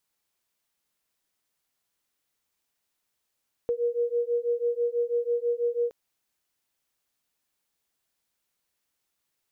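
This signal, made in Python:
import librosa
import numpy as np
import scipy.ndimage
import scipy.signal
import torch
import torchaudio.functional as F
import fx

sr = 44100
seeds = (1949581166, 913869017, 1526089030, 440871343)

y = fx.two_tone_beats(sr, length_s=2.22, hz=473.0, beat_hz=6.1, level_db=-27.0)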